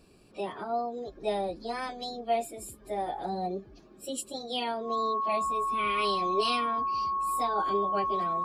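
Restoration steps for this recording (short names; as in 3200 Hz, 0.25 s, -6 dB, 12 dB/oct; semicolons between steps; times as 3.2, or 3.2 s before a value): notch 1100 Hz, Q 30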